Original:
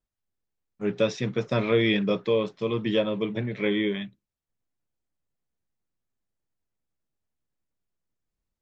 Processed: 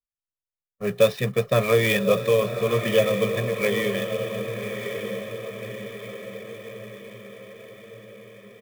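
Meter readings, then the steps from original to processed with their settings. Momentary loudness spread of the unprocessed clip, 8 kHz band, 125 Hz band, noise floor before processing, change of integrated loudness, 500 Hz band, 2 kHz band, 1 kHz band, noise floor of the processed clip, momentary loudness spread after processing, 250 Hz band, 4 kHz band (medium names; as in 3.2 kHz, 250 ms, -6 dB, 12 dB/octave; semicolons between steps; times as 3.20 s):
8 LU, no reading, +4.5 dB, under -85 dBFS, +2.5 dB, +5.5 dB, +5.5 dB, +6.0 dB, under -85 dBFS, 20 LU, -2.0 dB, +2.5 dB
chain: gate with hold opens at -41 dBFS; low-pass 4.4 kHz 24 dB/octave; harmonic-percussive split percussive +3 dB; comb 1.7 ms, depth 90%; echo that smears into a reverb 1136 ms, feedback 55%, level -7 dB; sampling jitter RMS 0.021 ms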